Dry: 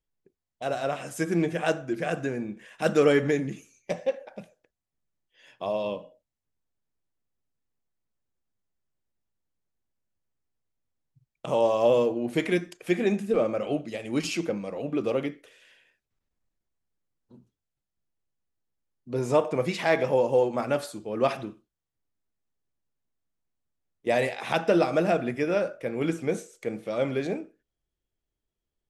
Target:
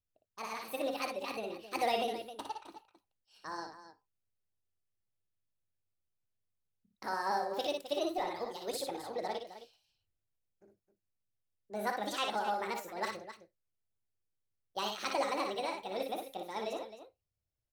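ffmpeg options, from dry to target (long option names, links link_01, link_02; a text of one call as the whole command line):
ffmpeg -i in.wav -af "asetrate=71883,aresample=44100,equalizer=frequency=100:width_type=o:width=0.67:gain=9,equalizer=frequency=250:width_type=o:width=0.67:gain=-6,equalizer=frequency=1000:width_type=o:width=0.67:gain=-7,aecho=1:1:58.31|262.4:0.562|0.251,volume=-8.5dB" out.wav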